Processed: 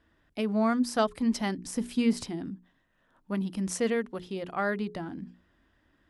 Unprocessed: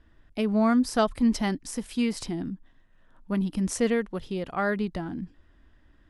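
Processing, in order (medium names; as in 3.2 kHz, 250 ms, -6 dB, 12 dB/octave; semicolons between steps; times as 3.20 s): high-pass 140 Hz 6 dB/octave; hum notches 60/120/180/240/300/360/420 Hz; 1.58–2.25 s: bass shelf 310 Hz +10.5 dB; trim -2 dB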